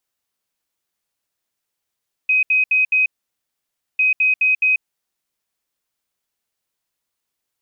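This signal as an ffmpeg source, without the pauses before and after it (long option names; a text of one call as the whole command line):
ffmpeg -f lavfi -i "aevalsrc='0.237*sin(2*PI*2520*t)*clip(min(mod(mod(t,1.7),0.21),0.14-mod(mod(t,1.7),0.21))/0.005,0,1)*lt(mod(t,1.7),0.84)':duration=3.4:sample_rate=44100" out.wav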